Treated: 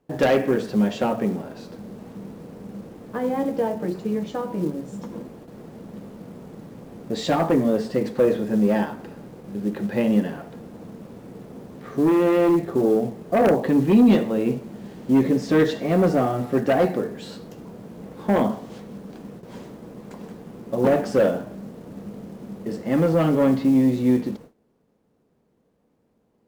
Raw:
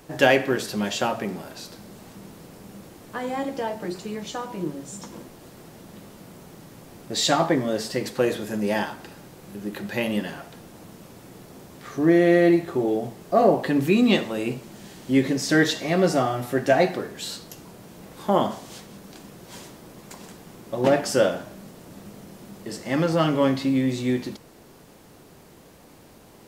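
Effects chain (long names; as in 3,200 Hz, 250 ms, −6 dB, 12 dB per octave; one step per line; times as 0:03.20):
low-pass filter 1,200 Hz 6 dB per octave
log-companded quantiser 6 bits
noise gate with hold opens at −37 dBFS
harmonic generator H 5 −9 dB, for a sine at −6 dBFS
hollow resonant body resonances 220/460 Hz, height 7 dB, ringing for 30 ms
level −7 dB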